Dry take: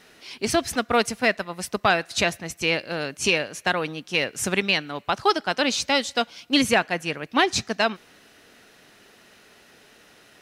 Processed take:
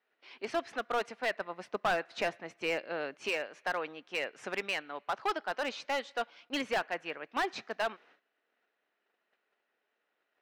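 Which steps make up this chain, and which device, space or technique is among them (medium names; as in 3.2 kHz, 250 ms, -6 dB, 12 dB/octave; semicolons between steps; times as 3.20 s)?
walkie-talkie (band-pass 440–2300 Hz; hard clipper -18.5 dBFS, distortion -10 dB; gate -53 dBFS, range -18 dB); 1.37–3.17 s: bass shelf 480 Hz +6 dB; trim -7 dB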